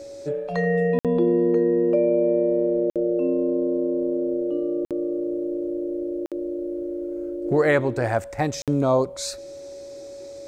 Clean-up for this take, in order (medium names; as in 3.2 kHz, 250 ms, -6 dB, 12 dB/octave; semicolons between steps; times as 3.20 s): band-stop 560 Hz, Q 30; interpolate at 0.99/2.90/4.85/6.26/8.62 s, 57 ms